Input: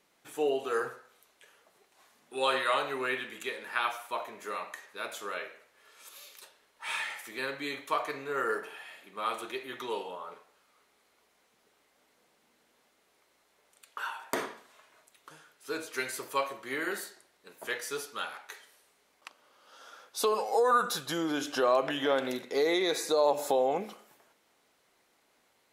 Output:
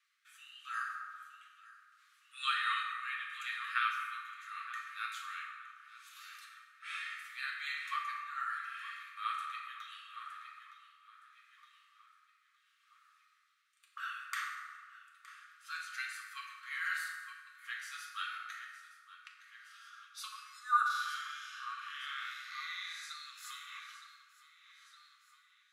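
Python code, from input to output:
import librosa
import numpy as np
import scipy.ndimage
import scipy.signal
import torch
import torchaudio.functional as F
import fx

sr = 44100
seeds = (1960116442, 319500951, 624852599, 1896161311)

y = fx.spec_blur(x, sr, span_ms=184.0, at=(20.85, 23.02), fade=0.02)
y = fx.brickwall_highpass(y, sr, low_hz=1100.0)
y = fx.echo_feedback(y, sr, ms=915, feedback_pct=48, wet_db=-14)
y = fx.rotary(y, sr, hz=0.75)
y = fx.lowpass(y, sr, hz=3500.0, slope=6)
y = fx.rev_fdn(y, sr, rt60_s=1.8, lf_ratio=1.0, hf_ratio=0.5, size_ms=22.0, drr_db=-0.5)
y = F.gain(torch.from_numpy(y), -1.5).numpy()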